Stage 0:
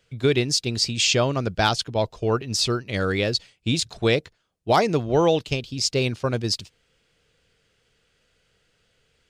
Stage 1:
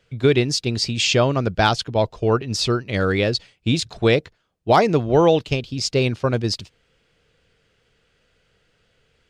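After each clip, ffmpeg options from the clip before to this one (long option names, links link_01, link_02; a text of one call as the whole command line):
ffmpeg -i in.wav -af "highshelf=frequency=4800:gain=-9,volume=4dB" out.wav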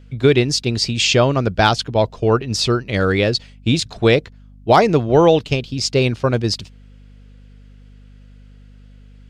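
ffmpeg -i in.wav -af "aeval=exprs='val(0)+0.00562*(sin(2*PI*50*n/s)+sin(2*PI*2*50*n/s)/2+sin(2*PI*3*50*n/s)/3+sin(2*PI*4*50*n/s)/4+sin(2*PI*5*50*n/s)/5)':channel_layout=same,volume=3dB" out.wav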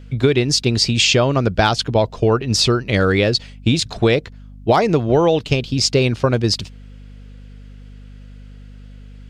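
ffmpeg -i in.wav -af "acompressor=threshold=-17dB:ratio=4,volume=5dB" out.wav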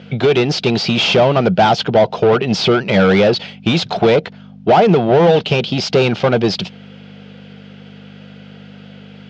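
ffmpeg -i in.wav -filter_complex "[0:a]asplit=2[link_01][link_02];[link_02]highpass=frequency=720:poles=1,volume=26dB,asoftclip=type=tanh:threshold=-1dB[link_03];[link_01][link_03]amix=inputs=2:normalize=0,lowpass=frequency=1300:poles=1,volume=-6dB,highpass=130,equalizer=frequency=180:width_type=q:width=4:gain=9,equalizer=frequency=280:width_type=q:width=4:gain=-7,equalizer=frequency=750:width_type=q:width=4:gain=4,equalizer=frequency=1100:width_type=q:width=4:gain=-6,equalizer=frequency=1800:width_type=q:width=4:gain=-5,equalizer=frequency=3200:width_type=q:width=4:gain=4,lowpass=frequency=5900:width=0.5412,lowpass=frequency=5900:width=1.3066,volume=-1.5dB" out.wav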